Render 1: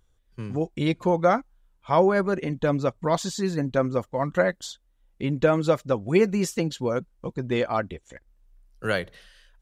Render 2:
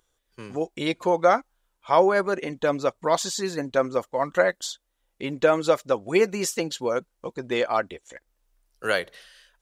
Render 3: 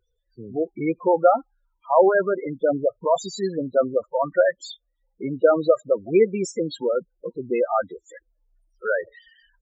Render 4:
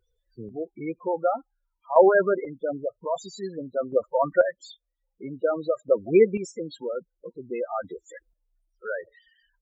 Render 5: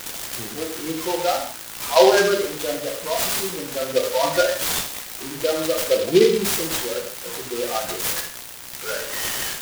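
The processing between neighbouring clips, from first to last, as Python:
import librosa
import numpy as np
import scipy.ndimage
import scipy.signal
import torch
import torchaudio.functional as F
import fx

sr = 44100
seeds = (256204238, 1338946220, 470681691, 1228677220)

y1 = fx.bass_treble(x, sr, bass_db=-15, treble_db=3)
y1 = F.gain(torch.from_numpy(y1), 2.5).numpy()
y2 = fx.spec_topn(y1, sr, count=8)
y2 = F.gain(torch.from_numpy(y2), 3.5).numpy()
y3 = fx.chopper(y2, sr, hz=0.51, depth_pct=60, duty_pct=25)
y4 = y3 + 0.5 * 10.0 ** (-18.0 / 20.0) * np.diff(np.sign(y3), prepend=np.sign(y3[:1]))
y4 = fx.rev_gated(y4, sr, seeds[0], gate_ms=210, shape='falling', drr_db=-1.0)
y4 = fx.noise_mod_delay(y4, sr, seeds[1], noise_hz=3400.0, depth_ms=0.062)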